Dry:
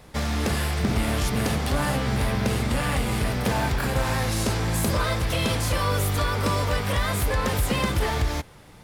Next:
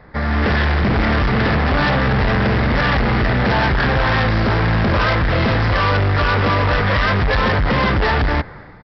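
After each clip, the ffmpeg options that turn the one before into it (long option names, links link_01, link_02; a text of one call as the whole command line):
ffmpeg -i in.wav -af "highshelf=frequency=2300:width_type=q:width=3:gain=-7,dynaudnorm=framelen=100:gausssize=7:maxgain=10dB,aresample=11025,volume=18dB,asoftclip=hard,volume=-18dB,aresample=44100,volume=4dB" out.wav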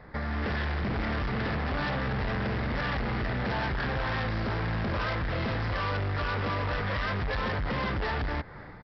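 ffmpeg -i in.wav -af "acompressor=threshold=-29dB:ratio=2.5,volume=-5dB" out.wav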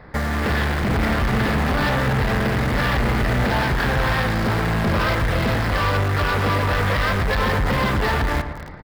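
ffmpeg -i in.wav -filter_complex "[0:a]asplit=2[link_01][link_02];[link_02]acrusher=bits=5:mix=0:aa=0.000001,volume=-5dB[link_03];[link_01][link_03]amix=inputs=2:normalize=0,asplit=2[link_04][link_05];[link_05]adelay=114,lowpass=frequency=2100:poles=1,volume=-8.5dB,asplit=2[link_06][link_07];[link_07]adelay=114,lowpass=frequency=2100:poles=1,volume=0.5,asplit=2[link_08][link_09];[link_09]adelay=114,lowpass=frequency=2100:poles=1,volume=0.5,asplit=2[link_10][link_11];[link_11]adelay=114,lowpass=frequency=2100:poles=1,volume=0.5,asplit=2[link_12][link_13];[link_13]adelay=114,lowpass=frequency=2100:poles=1,volume=0.5,asplit=2[link_14][link_15];[link_15]adelay=114,lowpass=frequency=2100:poles=1,volume=0.5[link_16];[link_04][link_06][link_08][link_10][link_12][link_14][link_16]amix=inputs=7:normalize=0,volume=6dB" out.wav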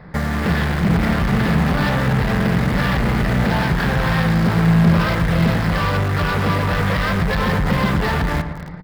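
ffmpeg -i in.wav -af "equalizer=frequency=170:width_type=o:width=0.37:gain=14" out.wav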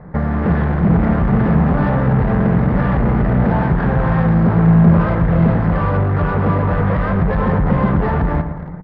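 ffmpeg -i in.wav -af "lowpass=1100,volume=3.5dB" out.wav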